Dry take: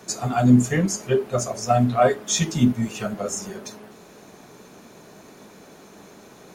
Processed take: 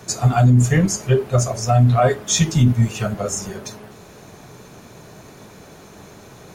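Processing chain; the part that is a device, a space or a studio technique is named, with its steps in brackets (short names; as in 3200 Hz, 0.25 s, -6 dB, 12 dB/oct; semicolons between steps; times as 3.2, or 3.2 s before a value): car stereo with a boomy subwoofer (resonant low shelf 160 Hz +8 dB, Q 1.5; limiter -10 dBFS, peak gain reduction 8.5 dB); gain +4 dB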